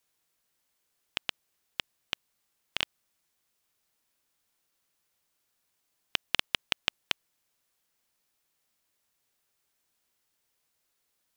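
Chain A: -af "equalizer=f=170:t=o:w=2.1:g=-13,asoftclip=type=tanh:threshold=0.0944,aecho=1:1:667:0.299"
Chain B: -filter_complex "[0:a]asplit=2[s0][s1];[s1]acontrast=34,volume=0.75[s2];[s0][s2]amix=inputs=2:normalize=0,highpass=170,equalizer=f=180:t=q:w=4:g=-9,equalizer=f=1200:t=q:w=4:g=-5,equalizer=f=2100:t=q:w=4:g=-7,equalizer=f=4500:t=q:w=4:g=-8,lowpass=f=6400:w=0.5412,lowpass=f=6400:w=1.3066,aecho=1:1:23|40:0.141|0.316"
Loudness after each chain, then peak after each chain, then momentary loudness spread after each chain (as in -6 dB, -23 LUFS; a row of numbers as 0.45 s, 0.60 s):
-43.5 LUFS, -29.5 LUFS; -20.5 dBFS, -1.5 dBFS; 12 LU, 9 LU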